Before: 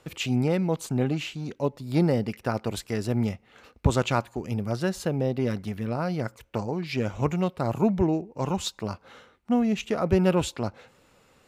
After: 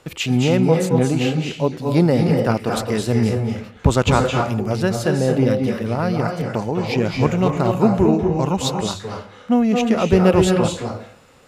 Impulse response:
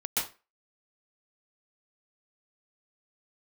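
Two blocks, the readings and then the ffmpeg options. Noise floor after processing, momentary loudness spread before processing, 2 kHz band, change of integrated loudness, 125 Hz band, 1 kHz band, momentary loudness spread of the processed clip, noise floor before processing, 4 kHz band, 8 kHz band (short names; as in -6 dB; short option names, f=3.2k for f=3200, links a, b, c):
-44 dBFS, 9 LU, +8.5 dB, +8.5 dB, +8.5 dB, +9.0 dB, 7 LU, -61 dBFS, +8.5 dB, +8.5 dB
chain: -filter_complex "[0:a]bandreject=f=50:t=h:w=6,bandreject=f=100:t=h:w=6,asplit=2[a][b];[1:a]atrim=start_sample=2205,asetrate=24696,aresample=44100[c];[b][c]afir=irnorm=-1:irlink=0,volume=-11.5dB[d];[a][d]amix=inputs=2:normalize=0,volume=4.5dB"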